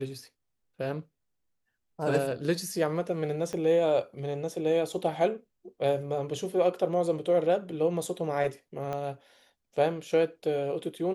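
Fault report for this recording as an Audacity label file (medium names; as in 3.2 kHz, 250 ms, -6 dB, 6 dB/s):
3.530000	3.530000	pop -22 dBFS
8.930000	8.930000	pop -22 dBFS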